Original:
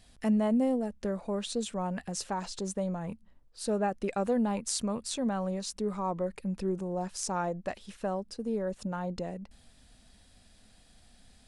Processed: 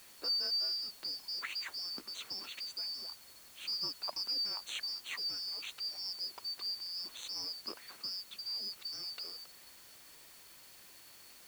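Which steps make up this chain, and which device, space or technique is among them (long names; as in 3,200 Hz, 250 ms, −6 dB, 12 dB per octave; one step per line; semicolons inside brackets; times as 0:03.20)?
split-band scrambled radio (band-splitting scrambler in four parts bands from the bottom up 2341; band-pass filter 330–3,100 Hz; white noise bed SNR 16 dB)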